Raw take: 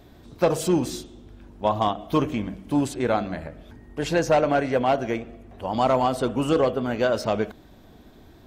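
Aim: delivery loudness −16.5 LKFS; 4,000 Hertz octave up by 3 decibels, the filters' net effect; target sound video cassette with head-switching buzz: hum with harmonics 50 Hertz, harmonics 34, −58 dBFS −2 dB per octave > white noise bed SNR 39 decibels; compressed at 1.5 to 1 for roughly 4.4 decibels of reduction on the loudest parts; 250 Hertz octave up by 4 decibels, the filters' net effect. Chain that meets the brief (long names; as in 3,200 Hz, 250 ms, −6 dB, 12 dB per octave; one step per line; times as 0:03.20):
parametric band 250 Hz +5 dB
parametric band 4,000 Hz +4 dB
downward compressor 1.5 to 1, threshold −26 dBFS
hum with harmonics 50 Hz, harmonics 34, −58 dBFS −2 dB per octave
white noise bed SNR 39 dB
level +9.5 dB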